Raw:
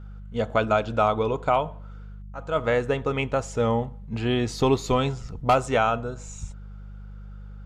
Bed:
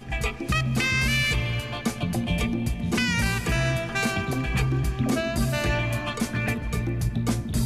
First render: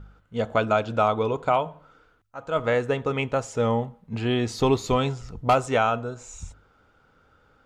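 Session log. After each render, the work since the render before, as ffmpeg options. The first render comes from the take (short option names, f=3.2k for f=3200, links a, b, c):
-af "bandreject=f=50:t=h:w=4,bandreject=f=100:t=h:w=4,bandreject=f=150:t=h:w=4,bandreject=f=200:t=h:w=4"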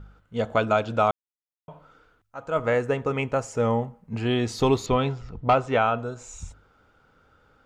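-filter_complex "[0:a]asettb=1/sr,asplit=3[a][b][c];[a]atrim=end=2.474[d];[b]atrim=start=2.47:end=4.25,asetpts=PTS-STARTPTS,afade=t=in:d=0.004:c=qsin,afade=t=out:st=1.776:d=0.004:c=qsin,equalizer=f=3.6k:w=3.2:g=-8.5[e];[c]atrim=start=4.246[f];[d][e]acrossfade=d=0.004:c1=hsin:c2=qsin[g];[g][f]acrossfade=d=0.004:c1=qsin:c2=hsin,asettb=1/sr,asplit=3[h][i][j];[h]atrim=end=4.864[k];[i]atrim=start=4.86:end=5.99,asetpts=PTS-STARTPTS,afade=t=in:d=0.004:c=qsin,afade=t=out:st=1.126:d=0.004:c=qsin,lowpass=3.5k[l];[j]atrim=start=5.986[m];[k][l]acrossfade=d=0.004:c1=hsin:c2=qsin[n];[n][m]acrossfade=d=0.004:c1=qsin:c2=hsin,asplit=3[o][p][q];[o]atrim=end=1.11,asetpts=PTS-STARTPTS,afade=t=out:st=1.106:d=0.004:c=hsin[r];[p]atrim=start=1.11:end=1.68,asetpts=PTS-STARTPTS,volume=0[s];[q]atrim=start=1.68,asetpts=PTS-STARTPTS,afade=t=in:d=0.004:c=hsin[t];[r][s][t]concat=n=3:v=0:a=1"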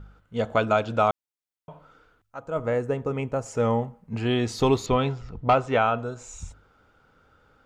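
-filter_complex "[0:a]asettb=1/sr,asplit=3[a][b][c];[a]atrim=end=2.394[d];[b]atrim=start=2.39:end=3.46,asetpts=PTS-STARTPTS,afade=t=in:d=0.004:c=qsin,afade=t=out:st=1.066:d=0.004:c=qsin,equalizer=f=2.7k:w=0.35:g=-8.5[e];[c]atrim=start=3.456[f];[d][e]acrossfade=d=0.004:c1=hsin:c2=qsin[g];[g][f]acrossfade=d=0.004:c1=qsin:c2=hsin"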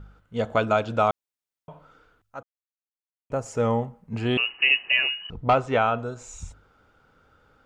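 -filter_complex "[0:a]asettb=1/sr,asplit=3[a][b][c];[a]atrim=end=4.374[d];[b]atrim=start=4.37:end=5.3,asetpts=PTS-STARTPTS,afade=t=in:d=0.004:c=qsin,afade=t=out:st=0.926:d=0.004:c=qsin,lowpass=f=2.6k:t=q:w=0.5098,lowpass=f=2.6k:t=q:w=0.6013,lowpass=f=2.6k:t=q:w=0.9,lowpass=f=2.6k:t=q:w=2.563,afreqshift=-3000[e];[c]atrim=start=5.296[f];[d][e]acrossfade=d=0.004:c1=hsin:c2=qsin[g];[g][f]acrossfade=d=0.004:c1=qsin:c2=hsin,asplit=3[h][i][j];[h]atrim=end=2.43,asetpts=PTS-STARTPTS,afade=t=out:st=2.426:d=0.004:c=hsin[k];[i]atrim=start=2.43:end=3.3,asetpts=PTS-STARTPTS,volume=0[l];[j]atrim=start=3.3,asetpts=PTS-STARTPTS,afade=t=in:d=0.004:c=hsin[m];[k][l][m]concat=n=3:v=0:a=1"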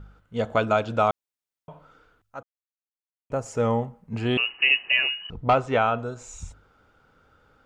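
-af anull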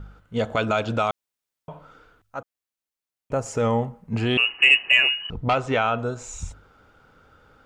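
-filter_complex "[0:a]acrossover=split=1800[a][b];[a]alimiter=limit=-19.5dB:level=0:latency=1:release=119[c];[c][b]amix=inputs=2:normalize=0,acontrast=25"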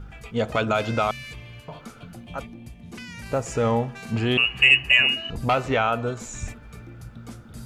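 -filter_complex "[1:a]volume=-15dB[a];[0:a][a]amix=inputs=2:normalize=0"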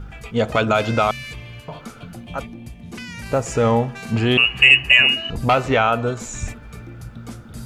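-af "volume=5dB,alimiter=limit=-1dB:level=0:latency=1"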